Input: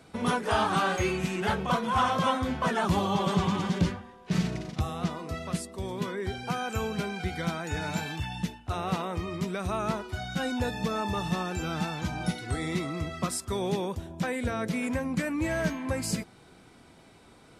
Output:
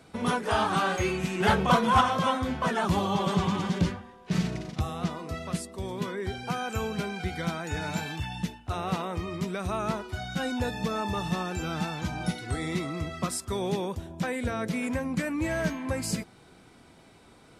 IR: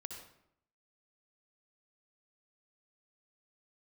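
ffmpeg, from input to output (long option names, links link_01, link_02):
-filter_complex "[0:a]asettb=1/sr,asplit=3[link_01][link_02][link_03];[link_01]atrim=end=1.404[link_04];[link_02]atrim=start=1.4:end=2.01,asetpts=PTS-STARTPTS,afade=type=in:duration=0.004:curve=qsin,afade=type=out:start_time=0.606:duration=0.004:curve=qsin,acontrast=35[link_05];[link_03]atrim=start=2.006[link_06];[link_04][link_05]acrossfade=duration=0.004:curve1=hsin:curve2=qsin[link_07];[link_07][link_06]acrossfade=duration=0.004:curve1=qsin:curve2=hsin"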